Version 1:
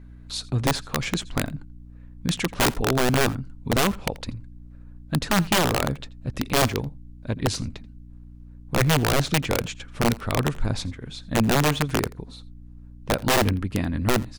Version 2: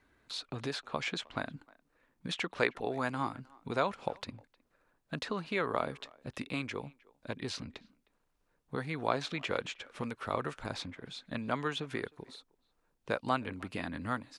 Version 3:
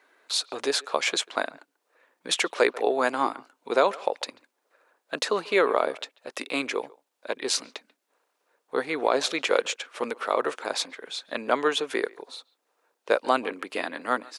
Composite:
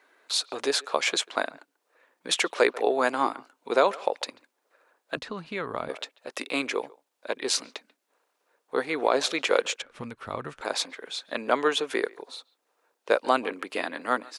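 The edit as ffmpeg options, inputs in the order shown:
-filter_complex "[1:a]asplit=2[a][b];[2:a]asplit=3[c][d][e];[c]atrim=end=5.172[f];[a]atrim=start=5.168:end=5.892[g];[d]atrim=start=5.888:end=9.822[h];[b]atrim=start=9.818:end=10.612[i];[e]atrim=start=10.608[j];[f][g]acrossfade=d=0.004:c1=hsin:c2=hsin[k];[k][h]acrossfade=d=0.004:c1=hsin:c2=hsin[l];[l][i]acrossfade=d=0.004:c1=hsin:c2=hsin[m];[m][j]acrossfade=d=0.004:c1=hsin:c2=hsin"

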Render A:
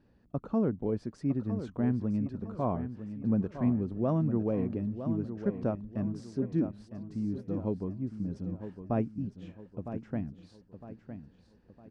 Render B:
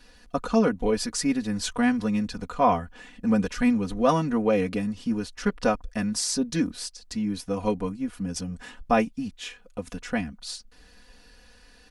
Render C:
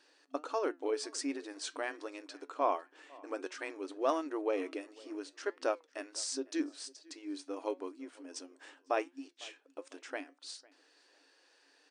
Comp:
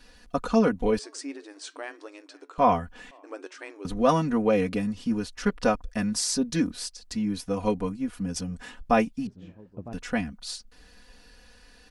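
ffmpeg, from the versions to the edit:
-filter_complex "[2:a]asplit=2[a][b];[1:a]asplit=4[c][d][e][f];[c]atrim=end=0.992[g];[a]atrim=start=0.988:end=2.582[h];[d]atrim=start=2.578:end=3.112[i];[b]atrim=start=3.108:end=3.852[j];[e]atrim=start=3.848:end=9.272[k];[0:a]atrim=start=9.268:end=9.932[l];[f]atrim=start=9.928[m];[g][h]acrossfade=d=0.004:c1=hsin:c2=hsin[n];[n][i]acrossfade=d=0.004:c1=hsin:c2=hsin[o];[o][j]acrossfade=d=0.004:c1=hsin:c2=hsin[p];[p][k]acrossfade=d=0.004:c1=hsin:c2=hsin[q];[q][l]acrossfade=d=0.004:c1=hsin:c2=hsin[r];[r][m]acrossfade=d=0.004:c1=hsin:c2=hsin"

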